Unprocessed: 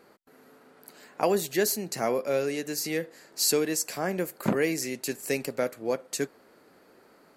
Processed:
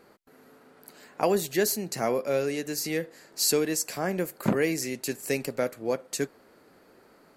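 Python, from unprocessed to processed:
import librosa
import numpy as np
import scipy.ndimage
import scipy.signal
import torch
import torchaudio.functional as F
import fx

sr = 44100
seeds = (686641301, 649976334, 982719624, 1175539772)

y = fx.low_shelf(x, sr, hz=90.0, db=8.5)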